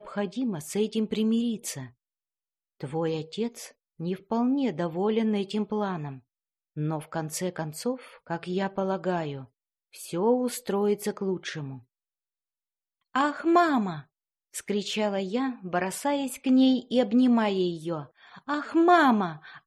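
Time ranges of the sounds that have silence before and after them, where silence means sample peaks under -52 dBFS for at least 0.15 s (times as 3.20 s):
2.80–3.72 s
3.99–6.20 s
6.76–9.46 s
9.93–11.83 s
13.14–14.04 s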